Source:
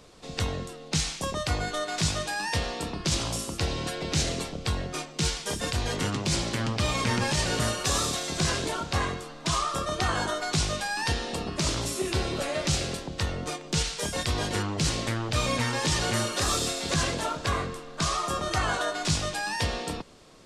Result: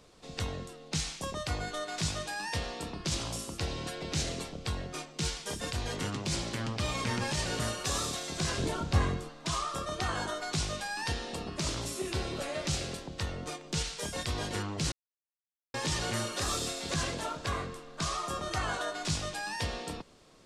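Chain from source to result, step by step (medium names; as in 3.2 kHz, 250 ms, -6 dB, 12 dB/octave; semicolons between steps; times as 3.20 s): 8.58–9.29 s: bass shelf 330 Hz +10.5 dB; 14.92–15.74 s: mute; trim -6 dB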